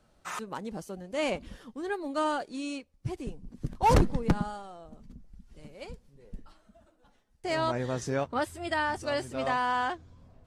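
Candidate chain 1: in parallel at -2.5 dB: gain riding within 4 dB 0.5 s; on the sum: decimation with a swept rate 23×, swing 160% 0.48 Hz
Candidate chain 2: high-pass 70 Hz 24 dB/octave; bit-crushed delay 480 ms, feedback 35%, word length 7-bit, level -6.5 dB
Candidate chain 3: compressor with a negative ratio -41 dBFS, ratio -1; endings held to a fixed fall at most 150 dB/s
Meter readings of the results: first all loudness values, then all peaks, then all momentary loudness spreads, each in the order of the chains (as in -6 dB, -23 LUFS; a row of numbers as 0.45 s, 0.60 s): -26.5 LUFS, -31.0 LUFS, -41.5 LUFS; -11.0 dBFS, -12.0 dBFS, -22.0 dBFS; 15 LU, 16 LU, 13 LU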